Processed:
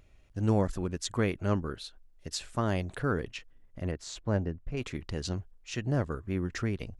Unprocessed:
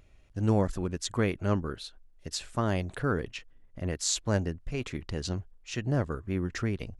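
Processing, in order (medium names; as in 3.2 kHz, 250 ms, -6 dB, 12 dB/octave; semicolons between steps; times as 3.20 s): 3.91–4.77 s: low-pass 1.3 kHz 6 dB/octave; trim -1 dB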